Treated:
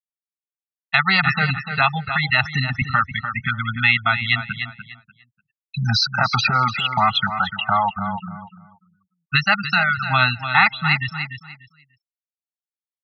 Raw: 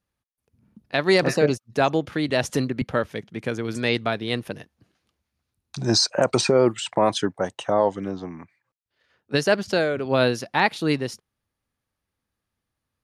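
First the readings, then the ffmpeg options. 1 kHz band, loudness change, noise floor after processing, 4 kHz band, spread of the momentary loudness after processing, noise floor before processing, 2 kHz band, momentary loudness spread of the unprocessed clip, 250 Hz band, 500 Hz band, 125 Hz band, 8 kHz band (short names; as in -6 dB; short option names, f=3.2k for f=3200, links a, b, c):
+7.5 dB, +4.0 dB, under -85 dBFS, +5.0 dB, 12 LU, -83 dBFS, +10.5 dB, 12 LU, -4.5 dB, -13.5 dB, +5.5 dB, -10.0 dB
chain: -filter_complex "[0:a]aecho=1:1:1.5:0.94,acrossover=split=3200[a][b];[b]acompressor=threshold=-42dB:ratio=4:attack=1:release=60[c];[a][c]amix=inputs=2:normalize=0,firequalizer=gain_entry='entry(160,0);entry(540,-27);entry(850,4);entry(1200,7)':delay=0.05:min_phase=1,afftfilt=real='re*lt(hypot(re,im),1.26)':imag='im*lt(hypot(re,im),1.26)':win_size=1024:overlap=0.75,lowshelf=f=160:g=-4.5,afftfilt=real='re*gte(hypot(re,im),0.0891)':imag='im*gte(hypot(re,im),0.0891)':win_size=1024:overlap=0.75,aecho=1:1:295|590|885:0.251|0.0502|0.01,asplit=2[d][e];[e]acompressor=threshold=-30dB:ratio=6,volume=2.5dB[f];[d][f]amix=inputs=2:normalize=0,volume=1dB"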